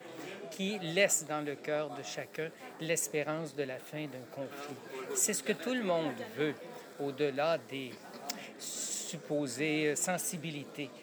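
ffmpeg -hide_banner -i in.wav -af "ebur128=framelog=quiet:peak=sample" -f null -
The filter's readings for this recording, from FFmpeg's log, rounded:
Integrated loudness:
  I:         -35.0 LUFS
  Threshold: -45.1 LUFS
Loudness range:
  LRA:         3.4 LU
  Threshold: -55.5 LUFS
  LRA low:   -37.5 LUFS
  LRA high:  -34.1 LUFS
Sample peak:
  Peak:      -14.9 dBFS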